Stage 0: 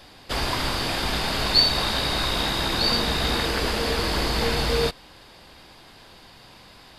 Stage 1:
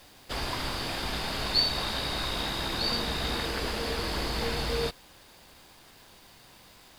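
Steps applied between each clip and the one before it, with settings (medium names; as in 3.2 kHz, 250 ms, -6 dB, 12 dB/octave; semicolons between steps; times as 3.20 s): word length cut 8-bit, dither none; trim -7 dB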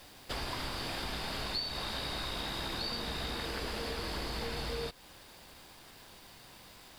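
band-stop 6.5 kHz, Q 29; compression 4:1, threshold -35 dBFS, peak gain reduction 13 dB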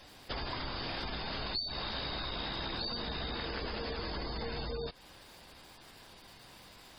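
spectral gate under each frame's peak -20 dB strong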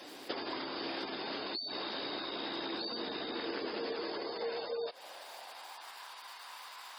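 compression, threshold -41 dBFS, peak gain reduction 9 dB; high-pass sweep 320 Hz -> 1 kHz, 3.76–6.08 s; trim +4.5 dB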